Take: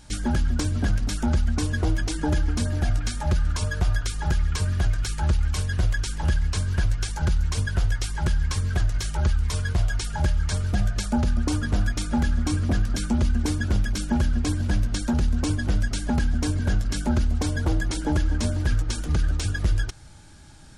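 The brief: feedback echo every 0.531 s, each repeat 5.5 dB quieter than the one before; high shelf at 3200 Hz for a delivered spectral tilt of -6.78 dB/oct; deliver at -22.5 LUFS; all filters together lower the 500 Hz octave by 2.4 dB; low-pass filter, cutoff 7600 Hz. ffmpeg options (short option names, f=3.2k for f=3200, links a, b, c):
-af "lowpass=7.6k,equalizer=f=500:t=o:g=-3,highshelf=f=3.2k:g=-8.5,aecho=1:1:531|1062|1593|2124|2655|3186|3717:0.531|0.281|0.149|0.079|0.0419|0.0222|0.0118,volume=3dB"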